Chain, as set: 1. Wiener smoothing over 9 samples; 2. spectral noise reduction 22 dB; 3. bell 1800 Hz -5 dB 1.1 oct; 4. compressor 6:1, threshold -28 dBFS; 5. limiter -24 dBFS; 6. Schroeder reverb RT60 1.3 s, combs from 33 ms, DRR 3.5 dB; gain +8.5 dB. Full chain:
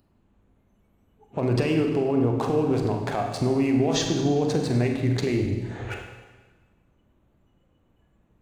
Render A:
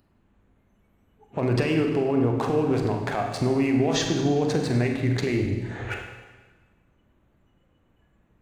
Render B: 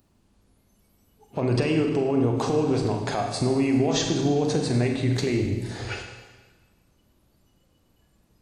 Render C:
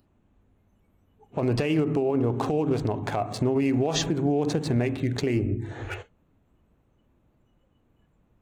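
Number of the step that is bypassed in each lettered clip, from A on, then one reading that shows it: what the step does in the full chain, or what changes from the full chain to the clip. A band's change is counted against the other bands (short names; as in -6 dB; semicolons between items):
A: 3, 2 kHz band +3.5 dB; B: 1, 8 kHz band +2.0 dB; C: 6, momentary loudness spread change -2 LU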